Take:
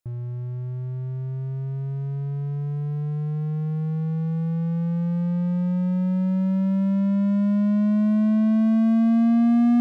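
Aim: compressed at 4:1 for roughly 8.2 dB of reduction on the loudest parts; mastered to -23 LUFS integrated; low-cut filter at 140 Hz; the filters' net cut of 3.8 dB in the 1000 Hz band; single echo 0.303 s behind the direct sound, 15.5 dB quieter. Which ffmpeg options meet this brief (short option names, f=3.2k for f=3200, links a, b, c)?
-af "highpass=140,equalizer=f=1k:t=o:g=-6,acompressor=threshold=-28dB:ratio=4,aecho=1:1:303:0.168,volume=7dB"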